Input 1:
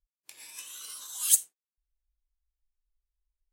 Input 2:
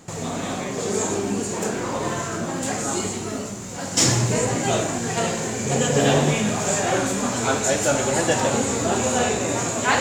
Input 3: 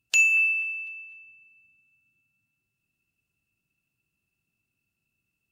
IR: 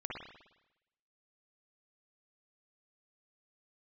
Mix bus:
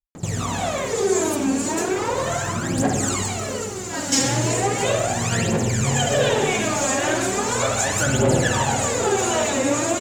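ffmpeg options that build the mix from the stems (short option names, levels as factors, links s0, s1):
-filter_complex "[0:a]volume=0.316[s0];[1:a]aphaser=in_gain=1:out_gain=1:delay=3.8:decay=0.77:speed=0.37:type=triangular,adelay=150,volume=0.75,asplit=2[s1][s2];[s2]volume=0.596[s3];[s0][s1]amix=inputs=2:normalize=0,acompressor=threshold=0.0708:ratio=6,volume=1[s4];[3:a]atrim=start_sample=2205[s5];[s3][s5]afir=irnorm=-1:irlink=0[s6];[s4][s6]amix=inputs=2:normalize=0"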